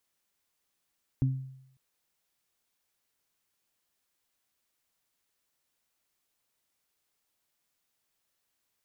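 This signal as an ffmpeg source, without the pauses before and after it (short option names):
-f lavfi -i "aevalsrc='0.0891*pow(10,-3*t/0.75)*sin(2*PI*132*t)+0.0422*pow(10,-3*t/0.33)*sin(2*PI*264*t)':d=0.55:s=44100"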